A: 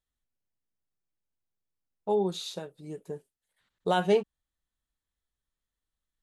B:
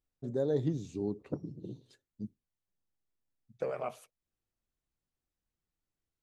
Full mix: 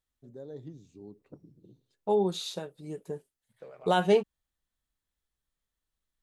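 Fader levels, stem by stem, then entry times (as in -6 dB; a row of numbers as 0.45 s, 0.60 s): +1.0 dB, -13.0 dB; 0.00 s, 0.00 s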